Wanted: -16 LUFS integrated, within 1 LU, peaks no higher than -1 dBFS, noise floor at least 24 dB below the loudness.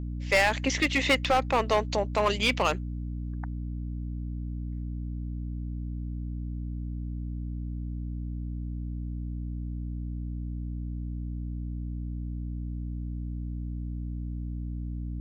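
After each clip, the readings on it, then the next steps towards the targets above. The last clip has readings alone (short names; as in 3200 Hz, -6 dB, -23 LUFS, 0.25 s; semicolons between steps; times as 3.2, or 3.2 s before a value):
clipped 0.4%; flat tops at -17.0 dBFS; hum 60 Hz; harmonics up to 300 Hz; hum level -31 dBFS; loudness -31.5 LUFS; peak -17.0 dBFS; loudness target -16.0 LUFS
-> clip repair -17 dBFS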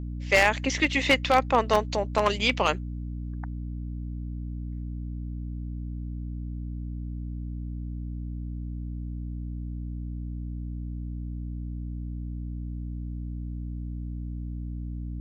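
clipped 0.0%; hum 60 Hz; harmonics up to 300 Hz; hum level -31 dBFS
-> de-hum 60 Hz, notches 5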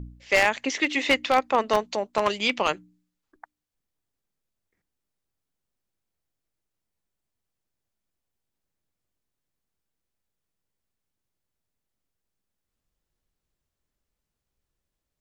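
hum none; loudness -23.5 LUFS; peak -7.0 dBFS; loudness target -16.0 LUFS
-> gain +7.5 dB; limiter -1 dBFS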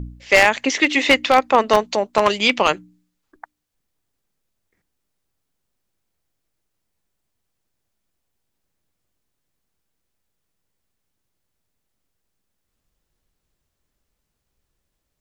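loudness -16.5 LUFS; peak -1.0 dBFS; noise floor -77 dBFS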